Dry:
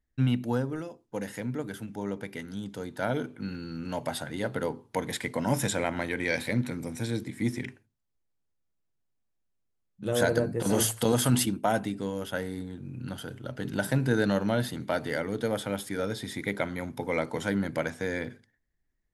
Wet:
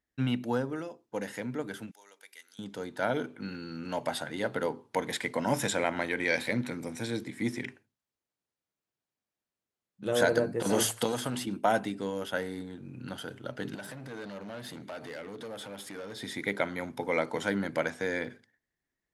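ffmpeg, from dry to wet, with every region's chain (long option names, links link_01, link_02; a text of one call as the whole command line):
ffmpeg -i in.wav -filter_complex "[0:a]asettb=1/sr,asplit=3[link_01][link_02][link_03];[link_01]atrim=end=1.914[link_04];[link_02]atrim=start=1.91:end=2.59,asetpts=PTS-STARTPTS,afade=type=in:duration=0.004:curve=qsin,afade=type=out:start_time=0.676:duration=0.004:curve=qsin,highpass=350,aderivative[link_05];[link_03]atrim=start=2.586[link_06];[link_04][link_05]acrossfade=duration=0.004:curve1=hsin:curve2=qsin[link_07];[link_07][link_06]acrossfade=duration=0.004:curve1=qsin:curve2=hsin,asettb=1/sr,asplit=3[link_08][link_09][link_10];[link_08]atrim=end=11.054[link_11];[link_09]atrim=start=11.05:end=11.51,asetpts=PTS-STARTPTS,afade=type=in:duration=0.004:curve=qsin,afade=type=out:start_time=0.456:duration=0.004:curve=qsin,aeval=exprs='clip(val(0),-1,0.106)':channel_layout=same,acrossover=split=1100|5700[link_12][link_13][link_14];[link_12]acompressor=threshold=-28dB:ratio=4[link_15];[link_13]acompressor=threshold=-41dB:ratio=4[link_16];[link_14]acompressor=threshold=-42dB:ratio=4[link_17];[link_15][link_16][link_17]amix=inputs=3:normalize=0[link_18];[link_10]atrim=start=11.506[link_19];[link_11][link_18]acrossfade=duration=0.004:curve1=hsin:curve2=qsin[link_20];[link_20][link_19]acrossfade=duration=0.004:curve1=qsin:curve2=hsin,asettb=1/sr,asplit=3[link_21][link_22][link_23];[link_21]atrim=end=13.754[link_24];[link_22]atrim=start=13.75:end=16.23,asetpts=PTS-STARTPTS,afade=type=in:duration=0.004:curve=qsin,afade=type=out:start_time=2.476:duration=0.004:curve=qsin,acompressor=threshold=-36dB:ratio=3:attack=3.2:release=140:knee=1:detection=peak,volume=36dB,asoftclip=hard,volume=-36dB[link_25];[link_23]atrim=start=16.226[link_26];[link_24][link_25]acrossfade=duration=0.004:curve1=hsin:curve2=qsin[link_27];[link_27][link_26]acrossfade=duration=0.004:curve1=qsin:curve2=hsin,highpass=frequency=300:poles=1,highshelf=frequency=9700:gain=-9,volume=1.5dB" out.wav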